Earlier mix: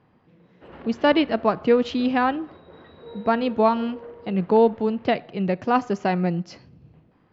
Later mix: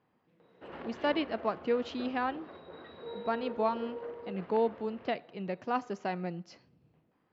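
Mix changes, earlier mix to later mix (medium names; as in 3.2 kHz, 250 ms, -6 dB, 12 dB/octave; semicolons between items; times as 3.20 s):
speech -10.5 dB; master: add bass shelf 140 Hz -12 dB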